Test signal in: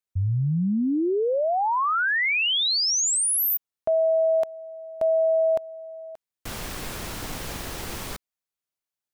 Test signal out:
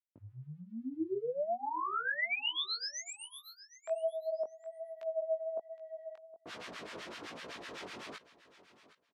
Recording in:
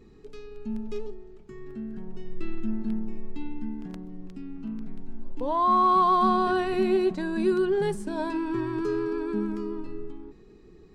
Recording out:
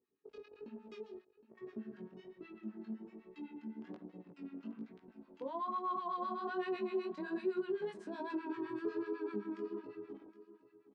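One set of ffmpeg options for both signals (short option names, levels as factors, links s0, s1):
-filter_complex "[0:a]agate=range=0.0501:threshold=0.00794:ratio=16:release=25:detection=peak,bandreject=f=800:w=12,acompressor=threshold=0.0251:ratio=6:attack=0.14:release=417:knee=6:detection=peak,acrossover=split=1000[s0][s1];[s0]aeval=exprs='val(0)*(1-1/2+1/2*cos(2*PI*7.9*n/s))':c=same[s2];[s1]aeval=exprs='val(0)*(1-1/2-1/2*cos(2*PI*7.9*n/s))':c=same[s3];[s2][s3]amix=inputs=2:normalize=0,flanger=delay=16:depth=6.4:speed=1.2,highpass=290,lowpass=3900,asplit=2[s4][s5];[s5]aecho=0:1:766|1532:0.15|0.0269[s6];[s4][s6]amix=inputs=2:normalize=0,volume=2"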